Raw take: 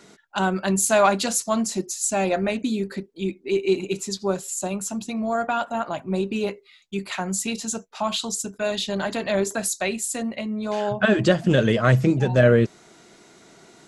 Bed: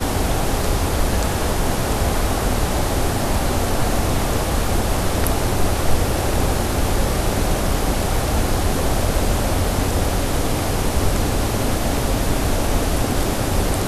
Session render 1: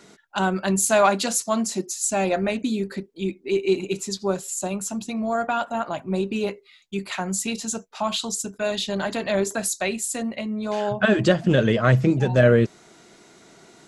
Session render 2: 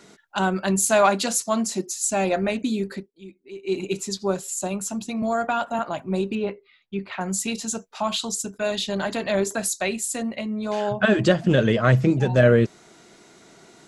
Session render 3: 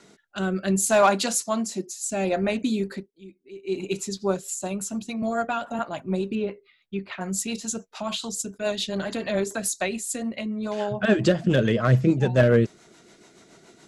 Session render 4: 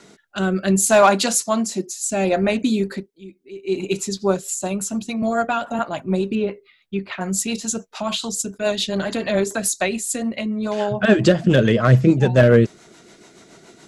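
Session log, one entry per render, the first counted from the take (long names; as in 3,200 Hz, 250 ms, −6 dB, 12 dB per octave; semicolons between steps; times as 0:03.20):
0:01.02–0:02.01: high-pass filter 140 Hz; 0:11.32–0:12.12: high-shelf EQ 9,000 Hz −12 dB
0:02.93–0:03.80: duck −15.5 dB, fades 0.18 s; 0:05.22–0:05.79: multiband upward and downward compressor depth 40%; 0:06.35–0:07.21: high-frequency loss of the air 310 metres
hard clipping −9 dBFS, distortion −26 dB; rotating-speaker cabinet horn 0.65 Hz, later 7 Hz, at 0:03.76
level +5.5 dB; brickwall limiter −3 dBFS, peak gain reduction 1 dB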